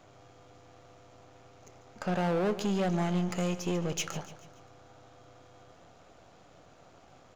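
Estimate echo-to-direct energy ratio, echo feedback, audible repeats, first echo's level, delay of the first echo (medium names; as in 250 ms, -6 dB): -13.0 dB, 47%, 4, -14.0 dB, 144 ms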